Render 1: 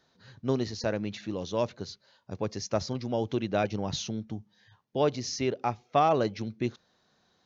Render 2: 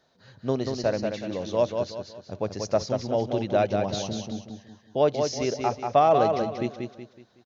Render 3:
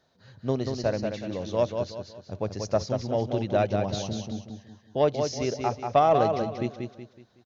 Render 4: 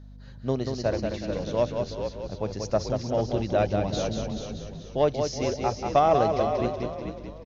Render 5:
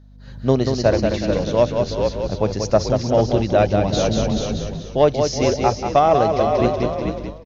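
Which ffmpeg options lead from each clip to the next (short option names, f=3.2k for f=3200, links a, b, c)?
-filter_complex "[0:a]equalizer=f=620:w=2.2:g=7,asplit=2[a][b];[b]aecho=0:1:186|372|558|744|930:0.562|0.214|0.0812|0.0309|0.0117[c];[a][c]amix=inputs=2:normalize=0"
-af "equalizer=f=77:w=0.68:g=6,aeval=exprs='0.398*(cos(1*acos(clip(val(0)/0.398,-1,1)))-cos(1*PI/2))+0.0316*(cos(3*acos(clip(val(0)/0.398,-1,1)))-cos(3*PI/2))':c=same"
-filter_complex "[0:a]asplit=2[a][b];[b]asplit=4[c][d][e][f];[c]adelay=435,afreqshift=-55,volume=-7.5dB[g];[d]adelay=870,afreqshift=-110,volume=-17.1dB[h];[e]adelay=1305,afreqshift=-165,volume=-26.8dB[i];[f]adelay=1740,afreqshift=-220,volume=-36.4dB[j];[g][h][i][j]amix=inputs=4:normalize=0[k];[a][k]amix=inputs=2:normalize=0,aeval=exprs='val(0)+0.00631*(sin(2*PI*50*n/s)+sin(2*PI*2*50*n/s)/2+sin(2*PI*3*50*n/s)/3+sin(2*PI*4*50*n/s)/4+sin(2*PI*5*50*n/s)/5)':c=same"
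-af "dynaudnorm=f=110:g=5:m=13dB,volume=-1dB"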